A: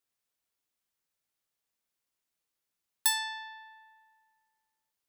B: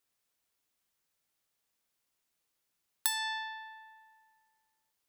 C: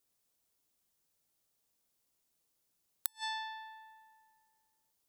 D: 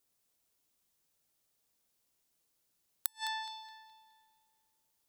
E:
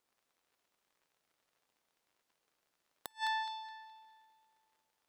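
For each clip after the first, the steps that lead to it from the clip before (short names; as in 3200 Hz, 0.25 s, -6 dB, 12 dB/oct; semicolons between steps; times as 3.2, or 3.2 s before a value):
compressor 6:1, threshold -32 dBFS, peak gain reduction 10.5 dB; gain +4 dB
bell 1900 Hz -8 dB 2.2 oct; flipped gate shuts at -28 dBFS, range -36 dB; gain +3.5 dB
narrowing echo 0.21 s, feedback 42%, band-pass 2800 Hz, level -5.5 dB; gain +1 dB
crackle 84/s -62 dBFS; overdrive pedal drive 14 dB, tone 1400 Hz, clips at -10 dBFS; gain -1.5 dB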